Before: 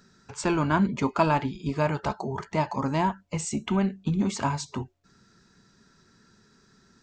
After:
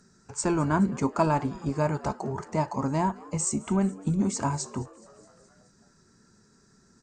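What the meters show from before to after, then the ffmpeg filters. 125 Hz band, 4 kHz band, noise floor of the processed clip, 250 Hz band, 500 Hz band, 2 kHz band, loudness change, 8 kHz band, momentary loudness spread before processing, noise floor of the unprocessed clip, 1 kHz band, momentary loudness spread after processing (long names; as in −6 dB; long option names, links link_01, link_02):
0.0 dB, −5.0 dB, −62 dBFS, 0.0 dB, −0.5 dB, −5.0 dB, −0.5 dB, +5.0 dB, 9 LU, −62 dBFS, −2.0 dB, 8 LU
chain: -filter_complex "[0:a]asplit=2[link_01][link_02];[link_02]asplit=5[link_03][link_04][link_05][link_06][link_07];[link_03]adelay=211,afreqshift=92,volume=-22dB[link_08];[link_04]adelay=422,afreqshift=184,volume=-25.7dB[link_09];[link_05]adelay=633,afreqshift=276,volume=-29.5dB[link_10];[link_06]adelay=844,afreqshift=368,volume=-33.2dB[link_11];[link_07]adelay=1055,afreqshift=460,volume=-37dB[link_12];[link_08][link_09][link_10][link_11][link_12]amix=inputs=5:normalize=0[link_13];[link_01][link_13]amix=inputs=2:normalize=0,aexciter=amount=9.7:drive=2.6:freq=4800,equalizer=frequency=5500:width=0.53:gain=-15" -ar 22050 -c:a aac -b:a 96k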